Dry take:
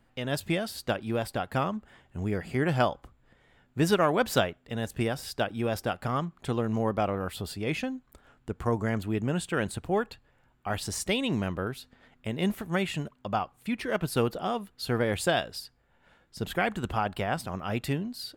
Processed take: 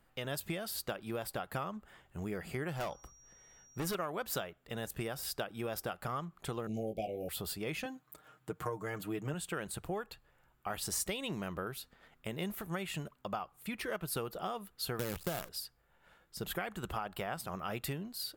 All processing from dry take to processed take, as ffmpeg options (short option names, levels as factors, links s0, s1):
-filter_complex "[0:a]asettb=1/sr,asplit=3[s0][s1][s2];[s0]atrim=end=2.774[s3];[s1]atrim=start=2.77:end=3.95,asetpts=PTS-STARTPTS,afade=t=in:d=0.004:c=qsin,afade=t=out:st=1.176:d=0.004:c=qsin,asoftclip=type=hard:threshold=0.0562,aeval=exprs='val(0)+0.00126*sin(2*PI*5700*n/s)':c=same[s4];[s2]atrim=start=3.946[s5];[s3][s4]acrossfade=d=0.004:c1=hsin:c2=qsin[s6];[s6][s5]acrossfade=d=0.004:c1=qsin:c2=hsin,asettb=1/sr,asplit=3[s7][s8][s9];[s7]atrim=end=6.674[s10];[s8]atrim=start=6.67:end=7.29,asetpts=PTS-STARTPTS,afade=t=in:d=0.004:c=qsin,afade=t=out:st=0.616:d=0.004:c=qsin,asuperstop=centerf=1300:order=20:qfactor=0.91,asplit=2[s11][s12];[s12]adelay=18,volume=0.596[s13];[s11][s13]amix=inputs=2:normalize=0,atrim=end_sample=27342[s14];[s9]atrim=start=7.286[s15];[s10][s14]acrossfade=d=0.004:c1=hsin:c2=qsin[s16];[s16][s15]acrossfade=d=0.004:c1=qsin:c2=hsin,asettb=1/sr,asplit=3[s17][s18][s19];[s17]atrim=end=7.854[s20];[s18]atrim=start=7.85:end=9.34,asetpts=PTS-STARTPTS,afade=t=in:d=0.004:c=qsin,afade=t=out:st=1.486:d=0.004:c=qsin,highpass=f=75:w=0.5412,highpass=f=75:w=1.3066,aecho=1:1:6.5:0.7,atrim=end_sample=65709[s21];[s19]atrim=start=9.336[s22];[s20][s21]acrossfade=d=0.004:c1=hsin:c2=qsin[s23];[s23][s22]acrossfade=d=0.004:c1=qsin:c2=hsin,asettb=1/sr,asplit=3[s24][s25][s26];[s24]atrim=end=14.994[s27];[s25]atrim=start=14.99:end=15.49,asetpts=PTS-STARTPTS,afade=t=in:d=0.004:c=qsin,afade=t=out:st=0.496:d=0.004:c=qsin,lowpass=f=1600:p=1,lowshelf=f=310:g=11.5,acrusher=bits=5:dc=4:mix=0:aa=0.000001[s28];[s26]atrim=start=15.486[s29];[s27][s28]acrossfade=d=0.004:c1=hsin:c2=qsin[s30];[s30][s29]acrossfade=d=0.004:c1=qsin:c2=hsin,equalizer=f=100:t=o:w=0.33:g=-10,equalizer=f=250:t=o:w=0.33:g=-8,equalizer=f=1250:t=o:w=0.33:g=4,acompressor=threshold=0.0282:ratio=6,equalizer=f=15000:t=o:w=0.83:g=13,volume=0.668"